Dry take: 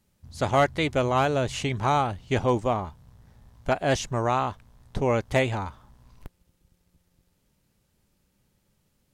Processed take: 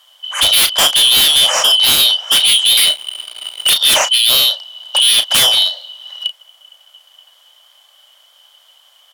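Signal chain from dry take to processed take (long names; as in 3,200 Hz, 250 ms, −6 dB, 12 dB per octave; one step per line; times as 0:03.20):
band-splitting scrambler in four parts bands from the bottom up 3412
elliptic high-pass filter 550 Hz, stop band 40 dB
0:02.77–0:03.70: leveller curve on the samples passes 3
parametric band 710 Hz +8.5 dB 2.3 octaves
sine wavefolder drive 15 dB, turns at −7.5 dBFS
double-tracking delay 34 ms −10 dB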